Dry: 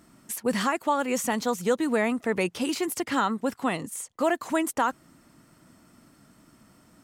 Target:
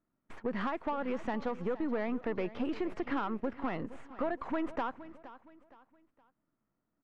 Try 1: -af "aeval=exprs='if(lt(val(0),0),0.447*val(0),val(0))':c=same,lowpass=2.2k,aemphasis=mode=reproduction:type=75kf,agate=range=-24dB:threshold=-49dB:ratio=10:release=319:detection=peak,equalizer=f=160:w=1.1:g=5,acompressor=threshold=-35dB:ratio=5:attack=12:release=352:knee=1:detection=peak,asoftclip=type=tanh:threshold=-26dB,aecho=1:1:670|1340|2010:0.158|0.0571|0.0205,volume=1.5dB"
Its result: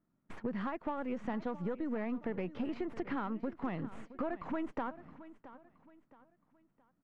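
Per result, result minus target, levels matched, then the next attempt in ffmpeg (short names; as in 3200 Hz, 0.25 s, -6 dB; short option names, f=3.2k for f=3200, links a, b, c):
echo 0.203 s late; compressor: peak gain reduction +6 dB; 125 Hz band +4.0 dB
-af "aeval=exprs='if(lt(val(0),0),0.447*val(0),val(0))':c=same,lowpass=2.2k,aemphasis=mode=reproduction:type=75kf,agate=range=-24dB:threshold=-49dB:ratio=10:release=319:detection=peak,equalizer=f=160:w=1.1:g=5,acompressor=threshold=-35dB:ratio=5:attack=12:release=352:knee=1:detection=peak,asoftclip=type=tanh:threshold=-26dB,aecho=1:1:467|934|1401:0.158|0.0571|0.0205,volume=1.5dB"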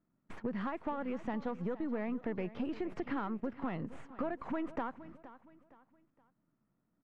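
compressor: peak gain reduction +6 dB; 125 Hz band +4.0 dB
-af "aeval=exprs='if(lt(val(0),0),0.447*val(0),val(0))':c=same,lowpass=2.2k,aemphasis=mode=reproduction:type=75kf,agate=range=-24dB:threshold=-49dB:ratio=10:release=319:detection=peak,equalizer=f=160:w=1.1:g=5,acompressor=threshold=-28.5dB:ratio=5:attack=12:release=352:knee=1:detection=peak,asoftclip=type=tanh:threshold=-26dB,aecho=1:1:467|934|1401:0.158|0.0571|0.0205,volume=1.5dB"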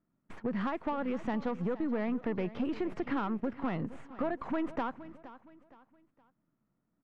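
125 Hz band +4.5 dB
-af "aeval=exprs='if(lt(val(0),0),0.447*val(0),val(0))':c=same,lowpass=2.2k,aemphasis=mode=reproduction:type=75kf,agate=range=-24dB:threshold=-49dB:ratio=10:release=319:detection=peak,equalizer=f=160:w=1.1:g=-3,acompressor=threshold=-28.5dB:ratio=5:attack=12:release=352:knee=1:detection=peak,asoftclip=type=tanh:threshold=-26dB,aecho=1:1:467|934|1401:0.158|0.0571|0.0205,volume=1.5dB"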